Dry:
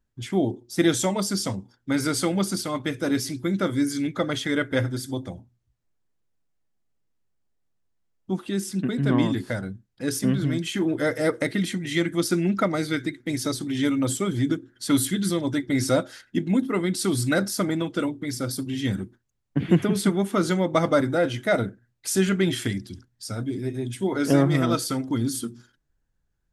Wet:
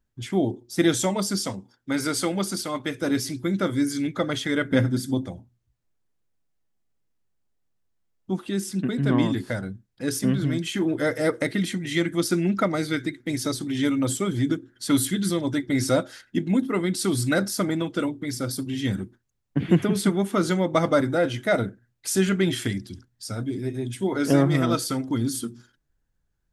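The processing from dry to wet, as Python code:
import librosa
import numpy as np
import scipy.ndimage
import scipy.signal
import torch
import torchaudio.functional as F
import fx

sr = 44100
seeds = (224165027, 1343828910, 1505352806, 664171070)

y = fx.low_shelf(x, sr, hz=130.0, db=-10.5, at=(1.39, 3.02))
y = fx.peak_eq(y, sr, hz=200.0, db=13.0, octaves=0.77, at=(4.65, 5.26))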